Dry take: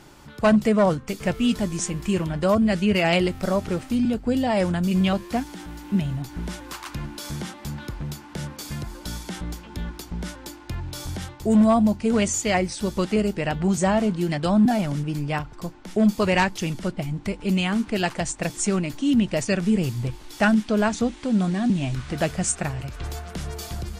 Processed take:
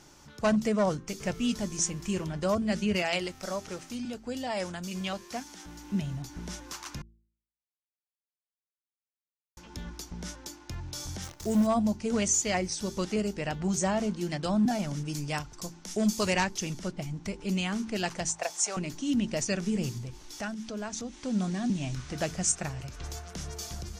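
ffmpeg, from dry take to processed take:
ffmpeg -i in.wav -filter_complex "[0:a]asettb=1/sr,asplit=3[link_01][link_02][link_03];[link_01]atrim=end=3.024[link_04];[link_02]atrim=start=3.02:end=5.65,asetpts=PTS-STARTPTS,afade=type=in:duration=0.004:curve=qsin,afade=type=out:start_time=2.626:duration=0.004:curve=qsin,lowshelf=frequency=350:gain=-10.5[link_05];[link_03]atrim=start=5.646[link_06];[link_04][link_05]acrossfade=duration=0.004:curve1=hsin:curve2=qsin[link_07];[link_07][link_06]acrossfade=duration=0.004:curve1=qsin:curve2=hsin,asettb=1/sr,asplit=3[link_08][link_09][link_10];[link_08]atrim=end=11.234[link_11];[link_09]atrim=start=11.23:end=11.67,asetpts=PTS-STARTPTS,afade=type=in:duration=0.004:curve=qsin,afade=type=out:start_time=0.436:duration=0.004:curve=qsin,acrusher=bits=7:dc=4:mix=0:aa=0.000001[link_12];[link_10]atrim=start=11.666[link_13];[link_11][link_12]acrossfade=duration=0.004:curve1=hsin:curve2=qsin[link_14];[link_14][link_13]acrossfade=duration=0.004:curve1=qsin:curve2=hsin,asettb=1/sr,asplit=3[link_15][link_16][link_17];[link_15]atrim=end=15.054[link_18];[link_16]atrim=start=15.05:end=16.34,asetpts=PTS-STARTPTS,afade=type=in:duration=0.004:curve=qsin,afade=type=out:start_time=1.286:duration=0.004:curve=qsin,equalizer=frequency=10000:width=0.35:gain=10[link_19];[link_17]atrim=start=16.336[link_20];[link_18][link_19]acrossfade=duration=0.004:curve1=hsin:curve2=qsin[link_21];[link_21][link_20]acrossfade=duration=0.004:curve1=qsin:curve2=hsin,asettb=1/sr,asplit=3[link_22][link_23][link_24];[link_22]atrim=end=18.284[link_25];[link_23]atrim=start=18.28:end=18.77,asetpts=PTS-STARTPTS,afade=type=in:duration=0.004:curve=qsin,afade=type=out:start_time=0.486:duration=0.004:curve=qsin,highpass=frequency=710:width_type=q:width=2.7[link_26];[link_24]atrim=start=18.766[link_27];[link_25][link_26]acrossfade=duration=0.004:curve1=hsin:curve2=qsin[link_28];[link_28][link_27]acrossfade=duration=0.004:curve1=qsin:curve2=hsin,asettb=1/sr,asplit=3[link_29][link_30][link_31];[link_29]atrim=end=19.984[link_32];[link_30]atrim=start=19.98:end=21.23,asetpts=PTS-STARTPTS,afade=type=in:duration=0.004:curve=qsin,afade=type=out:start_time=1.246:duration=0.004:curve=qsin,acompressor=threshold=-31dB:ratio=2:attack=3.2:release=140:knee=1:detection=peak[link_33];[link_31]atrim=start=21.226[link_34];[link_32][link_33]acrossfade=duration=0.004:curve1=hsin:curve2=qsin[link_35];[link_35][link_34]acrossfade=duration=0.004:curve1=qsin:curve2=hsin,asplit=3[link_36][link_37][link_38];[link_36]atrim=end=7.02,asetpts=PTS-STARTPTS,afade=type=out:start_time=7.016:duration=0.004:curve=hsin[link_39];[link_37]atrim=start=7.02:end=9.57,asetpts=PTS-STARTPTS,volume=0[link_40];[link_38]atrim=start=9.57,asetpts=PTS-STARTPTS,afade=type=in:duration=0.004:curve=hsin[link_41];[link_39][link_40][link_41]concat=n=3:v=0:a=1,equalizer=frequency=6000:width=2.1:gain=11,bandreject=frequency=55.75:width_type=h:width=4,bandreject=frequency=111.5:width_type=h:width=4,bandreject=frequency=167.25:width_type=h:width=4,bandreject=frequency=223:width_type=h:width=4,bandreject=frequency=278.75:width_type=h:width=4,bandreject=frequency=334.5:width_type=h:width=4,bandreject=frequency=390.25:width_type=h:width=4,volume=-7.5dB" out.wav

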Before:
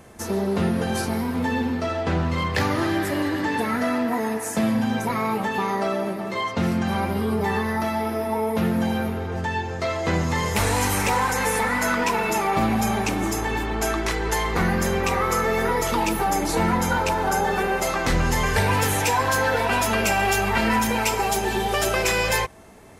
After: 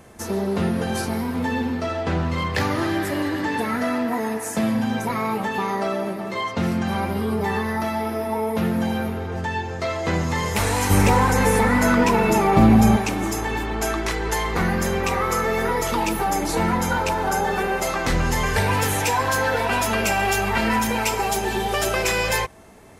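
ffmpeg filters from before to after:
ffmpeg -i in.wav -filter_complex "[0:a]asettb=1/sr,asplit=3[link_01][link_02][link_03];[link_01]atrim=end=10.904[link_04];[link_02]atrim=start=10.9:end=12.97,asetpts=PTS-STARTPTS,afade=type=in:duration=0.004:curve=qsin,afade=type=out:start_time=2.066:duration=0.004:curve=qsin,lowshelf=frequency=500:gain=11.5[link_05];[link_03]atrim=start=12.966[link_06];[link_04][link_05]acrossfade=duration=0.004:curve1=hsin:curve2=qsin[link_07];[link_07][link_06]acrossfade=duration=0.004:curve1=qsin:curve2=hsin" out.wav

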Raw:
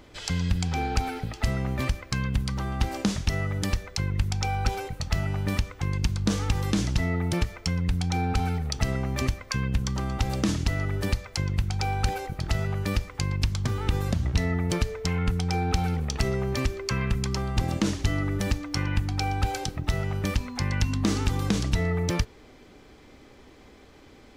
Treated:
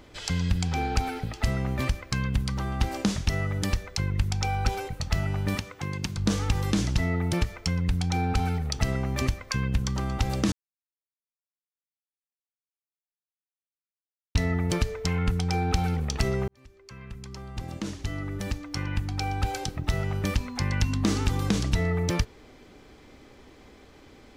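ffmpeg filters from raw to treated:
ffmpeg -i in.wav -filter_complex "[0:a]asettb=1/sr,asplit=3[link_01][link_02][link_03];[link_01]atrim=end=5.554[link_04];[link_02]atrim=start=5.55:end=6.17,asetpts=PTS-STARTPTS,afade=type=in:duration=0.004:curve=qsin,afade=type=out:start_time=0.616:duration=0.004:curve=qsin,highpass=140[link_05];[link_03]atrim=start=6.166[link_06];[link_04][link_05]acrossfade=duration=0.004:curve1=hsin:curve2=qsin[link_07];[link_07][link_06]acrossfade=duration=0.004:curve1=qsin:curve2=hsin,asplit=4[link_08][link_09][link_10][link_11];[link_08]atrim=end=10.52,asetpts=PTS-STARTPTS,afade=type=out:start_time=10.516:duration=0.004:curve=hsin[link_12];[link_09]atrim=start=10.52:end=14.35,asetpts=PTS-STARTPTS,volume=0[link_13];[link_10]atrim=start=14.35:end=16.48,asetpts=PTS-STARTPTS,afade=type=in:duration=0.004:curve=hsin,afade=type=out:start_time=2.126:duration=0.004:curve=hsin[link_14];[link_11]atrim=start=16.48,asetpts=PTS-STARTPTS,afade=type=in:duration=3.53[link_15];[link_12][link_13][link_14][link_15]concat=n=4:v=0:a=1" out.wav

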